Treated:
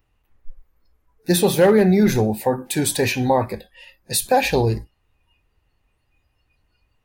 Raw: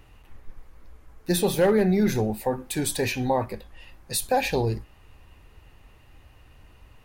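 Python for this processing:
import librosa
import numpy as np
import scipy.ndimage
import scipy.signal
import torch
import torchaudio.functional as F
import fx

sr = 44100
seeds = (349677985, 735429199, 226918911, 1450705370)

y = fx.noise_reduce_blind(x, sr, reduce_db=21)
y = y * 10.0 ** (6.0 / 20.0)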